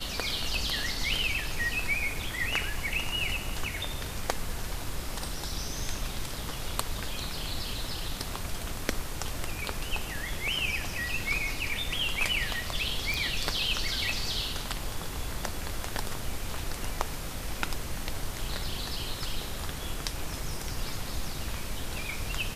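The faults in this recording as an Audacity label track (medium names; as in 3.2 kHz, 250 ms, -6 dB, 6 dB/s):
13.140000	13.140000	pop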